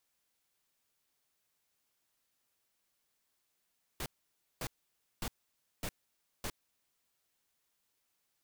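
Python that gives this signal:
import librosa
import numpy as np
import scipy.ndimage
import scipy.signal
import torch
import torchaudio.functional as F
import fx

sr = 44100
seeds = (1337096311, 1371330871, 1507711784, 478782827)

y = fx.noise_burst(sr, seeds[0], colour='pink', on_s=0.06, off_s=0.55, bursts=5, level_db=-38.0)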